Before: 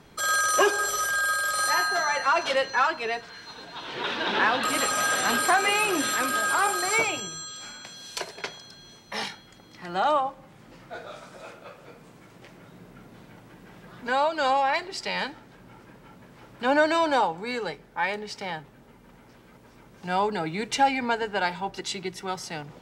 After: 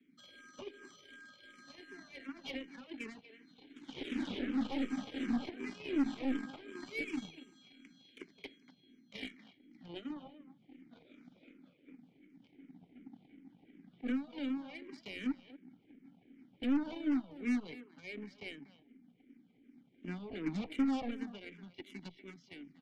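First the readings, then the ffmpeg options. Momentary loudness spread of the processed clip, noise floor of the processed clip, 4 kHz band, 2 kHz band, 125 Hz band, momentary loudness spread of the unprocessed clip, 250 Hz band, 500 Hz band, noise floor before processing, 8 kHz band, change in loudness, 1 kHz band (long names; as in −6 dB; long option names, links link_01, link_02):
24 LU, −68 dBFS, −19.5 dB, −22.5 dB, −10.0 dB, 17 LU, −1.5 dB, −20.0 dB, −53 dBFS, below −30 dB, −14.5 dB, −28.0 dB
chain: -filter_complex "[0:a]equalizer=frequency=180:width_type=o:width=1.7:gain=7,acrossover=split=160|870[link_01][link_02][link_03];[link_02]dynaudnorm=framelen=110:gausssize=31:maxgain=5dB[link_04];[link_03]alimiter=limit=-23dB:level=0:latency=1:release=79[link_05];[link_01][link_04][link_05]amix=inputs=3:normalize=0,acrossover=split=190[link_06][link_07];[link_07]acompressor=threshold=-23dB:ratio=6[link_08];[link_06][link_08]amix=inputs=2:normalize=0,asplit=3[link_09][link_10][link_11];[link_09]bandpass=frequency=270:width_type=q:width=8,volume=0dB[link_12];[link_10]bandpass=frequency=2290:width_type=q:width=8,volume=-6dB[link_13];[link_11]bandpass=frequency=3010:width_type=q:width=8,volume=-9dB[link_14];[link_12][link_13][link_14]amix=inputs=3:normalize=0,aresample=16000,asoftclip=type=tanh:threshold=-28.5dB,aresample=44100,aeval=exprs='0.0376*(cos(1*acos(clip(val(0)/0.0376,-1,1)))-cos(1*PI/2))+0.0075*(cos(2*acos(clip(val(0)/0.0376,-1,1)))-cos(2*PI/2))+0.00376*(cos(7*acos(clip(val(0)/0.0376,-1,1)))-cos(7*PI/2))+0.000668*(cos(8*acos(clip(val(0)/0.0376,-1,1)))-cos(8*PI/2))':channel_layout=same,asplit=2[link_15][link_16];[link_16]adelay=240,highpass=300,lowpass=3400,asoftclip=type=hard:threshold=-34dB,volume=-12dB[link_17];[link_15][link_17]amix=inputs=2:normalize=0,asplit=2[link_18][link_19];[link_19]afreqshift=-2.7[link_20];[link_18][link_20]amix=inputs=2:normalize=1,volume=3.5dB"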